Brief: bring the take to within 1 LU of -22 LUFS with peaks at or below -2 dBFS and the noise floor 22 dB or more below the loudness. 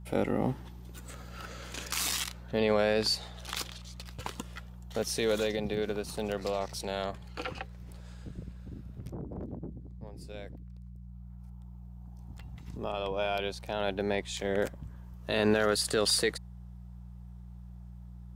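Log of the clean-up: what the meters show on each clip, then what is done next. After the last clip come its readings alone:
hum 60 Hz; harmonics up to 180 Hz; hum level -44 dBFS; loudness -32.0 LUFS; peak -13.5 dBFS; loudness target -22.0 LUFS
-> de-hum 60 Hz, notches 3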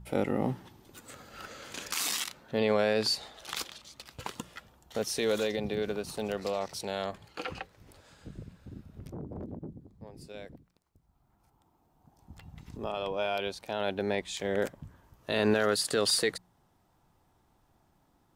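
hum none; loudness -32.0 LUFS; peak -13.5 dBFS; loudness target -22.0 LUFS
-> gain +10 dB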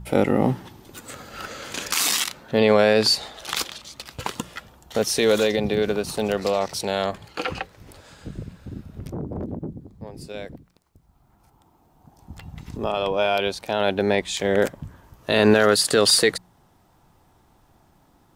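loudness -22.0 LUFS; peak -3.5 dBFS; noise floor -60 dBFS

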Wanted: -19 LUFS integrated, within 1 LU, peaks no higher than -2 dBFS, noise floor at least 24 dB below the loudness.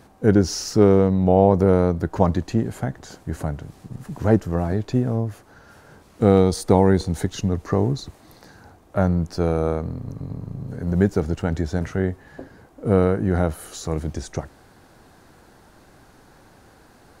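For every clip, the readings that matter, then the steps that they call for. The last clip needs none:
loudness -21.5 LUFS; peak -1.5 dBFS; loudness target -19.0 LUFS
-> gain +2.5 dB; limiter -2 dBFS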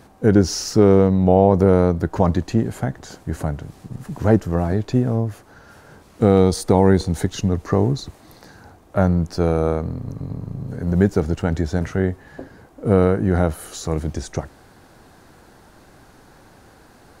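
loudness -19.5 LUFS; peak -2.0 dBFS; noise floor -50 dBFS

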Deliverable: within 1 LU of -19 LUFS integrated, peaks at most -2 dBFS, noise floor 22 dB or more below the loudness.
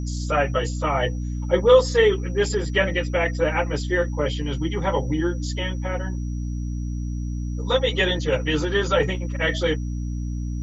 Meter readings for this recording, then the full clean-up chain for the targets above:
hum 60 Hz; harmonics up to 300 Hz; hum level -25 dBFS; steady tone 5800 Hz; tone level -51 dBFS; loudness -23.0 LUFS; peak -3.5 dBFS; loudness target -19.0 LUFS
-> notches 60/120/180/240/300 Hz; notch 5800 Hz, Q 30; gain +4 dB; limiter -2 dBFS

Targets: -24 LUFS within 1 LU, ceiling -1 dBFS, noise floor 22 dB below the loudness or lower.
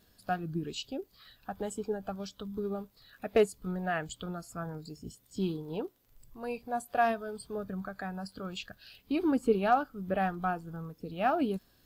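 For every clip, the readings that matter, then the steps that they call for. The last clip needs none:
ticks 21/s; loudness -34.0 LUFS; peak -14.5 dBFS; loudness target -24.0 LUFS
-> de-click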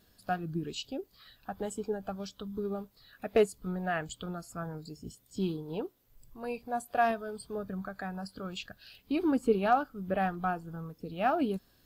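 ticks 0/s; loudness -34.0 LUFS; peak -14.5 dBFS; loudness target -24.0 LUFS
-> gain +10 dB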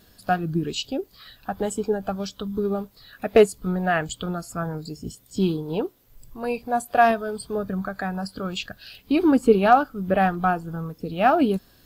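loudness -24.0 LUFS; peak -4.5 dBFS; noise floor -56 dBFS

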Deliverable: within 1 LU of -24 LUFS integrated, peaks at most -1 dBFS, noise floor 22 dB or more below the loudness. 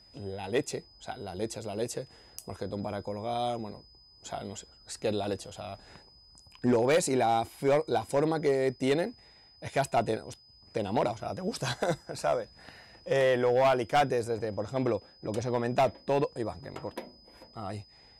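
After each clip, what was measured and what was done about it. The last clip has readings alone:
clipped 0.6%; flat tops at -19.0 dBFS; steady tone 5000 Hz; tone level -56 dBFS; loudness -30.5 LUFS; peak -19.0 dBFS; loudness target -24.0 LUFS
-> clip repair -19 dBFS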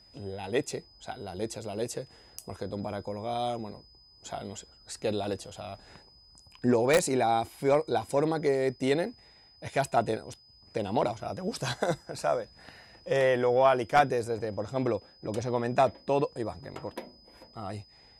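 clipped 0.0%; steady tone 5000 Hz; tone level -56 dBFS
-> notch 5000 Hz, Q 30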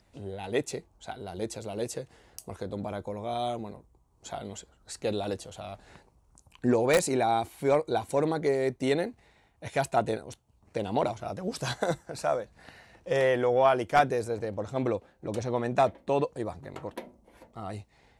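steady tone none; loudness -29.5 LUFS; peak -10.0 dBFS; loudness target -24.0 LUFS
-> gain +5.5 dB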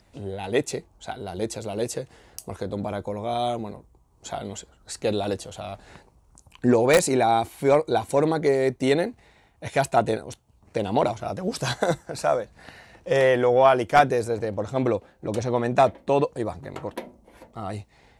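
loudness -24.0 LUFS; peak -4.5 dBFS; noise floor -60 dBFS

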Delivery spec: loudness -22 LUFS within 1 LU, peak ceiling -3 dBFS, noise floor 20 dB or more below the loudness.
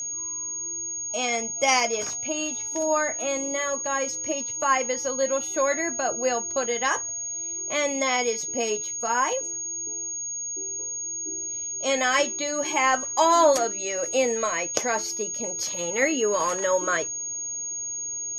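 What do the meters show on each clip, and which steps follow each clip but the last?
steady tone 6600 Hz; tone level -29 dBFS; loudness -25.0 LUFS; peak -3.0 dBFS; loudness target -22.0 LUFS
-> notch 6600 Hz, Q 30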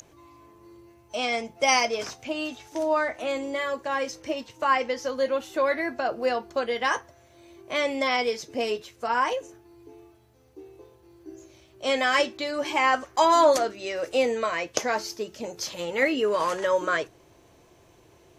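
steady tone none; loudness -26.0 LUFS; peak -3.5 dBFS; loudness target -22.0 LUFS
-> gain +4 dB; limiter -3 dBFS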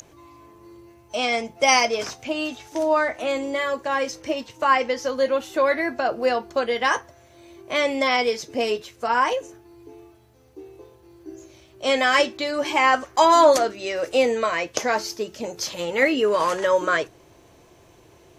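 loudness -22.0 LUFS; peak -3.0 dBFS; noise floor -53 dBFS

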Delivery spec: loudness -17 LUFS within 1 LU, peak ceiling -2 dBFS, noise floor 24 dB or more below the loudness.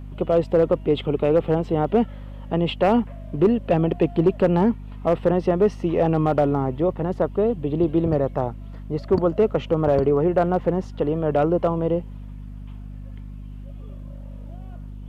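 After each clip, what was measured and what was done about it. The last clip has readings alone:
clipped 0.6%; flat tops at -10.0 dBFS; hum 50 Hz; harmonics up to 250 Hz; hum level -34 dBFS; loudness -21.5 LUFS; peak -10.0 dBFS; loudness target -17.0 LUFS
-> clip repair -10 dBFS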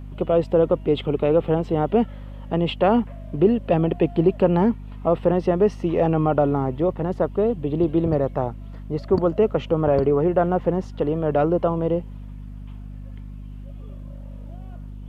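clipped 0.0%; hum 50 Hz; harmonics up to 250 Hz; hum level -34 dBFS
-> notches 50/100/150/200/250 Hz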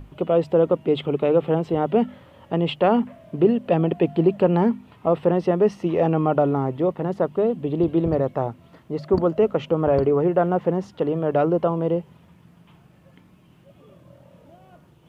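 hum none; loudness -21.5 LUFS; peak -5.5 dBFS; loudness target -17.0 LUFS
-> gain +4.5 dB; limiter -2 dBFS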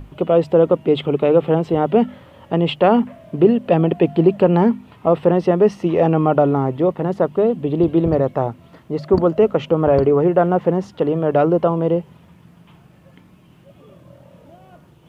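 loudness -17.0 LUFS; peak -2.0 dBFS; noise floor -49 dBFS

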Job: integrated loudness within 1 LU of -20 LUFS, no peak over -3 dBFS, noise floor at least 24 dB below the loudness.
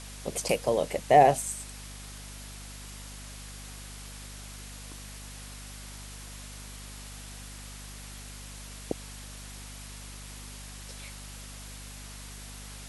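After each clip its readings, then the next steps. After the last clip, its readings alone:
hum 50 Hz; harmonics up to 250 Hz; hum level -43 dBFS; noise floor -44 dBFS; noise floor target -58 dBFS; loudness -33.5 LUFS; peak -7.0 dBFS; loudness target -20.0 LUFS
-> de-hum 50 Hz, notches 5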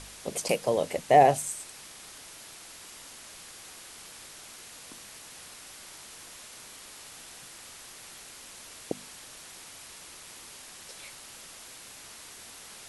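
hum none; noise floor -48 dBFS; noise floor target -51 dBFS
-> denoiser 6 dB, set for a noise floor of -48 dBFS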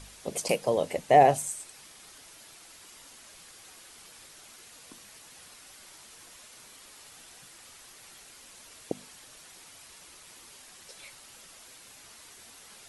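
noise floor -52 dBFS; loudness -26.0 LUFS; peak -7.0 dBFS; loudness target -20.0 LUFS
-> gain +6 dB; limiter -3 dBFS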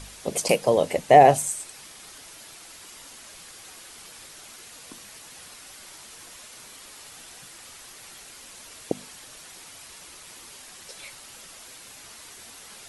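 loudness -20.5 LUFS; peak -3.0 dBFS; noise floor -46 dBFS

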